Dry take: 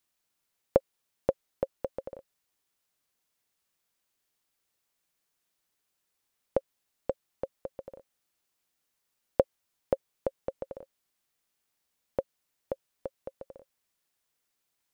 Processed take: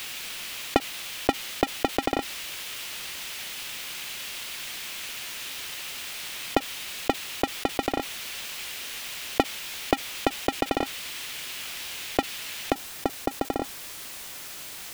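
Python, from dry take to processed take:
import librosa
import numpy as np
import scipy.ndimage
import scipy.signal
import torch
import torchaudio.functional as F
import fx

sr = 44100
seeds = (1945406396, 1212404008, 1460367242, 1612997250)

y = fx.cycle_switch(x, sr, every=2, mode='inverted')
y = fx.peak_eq(y, sr, hz=2800.0, db=fx.steps((0.0, 12.0), (12.72, 3.5)), octaves=1.6)
y = fx.env_flatten(y, sr, amount_pct=70)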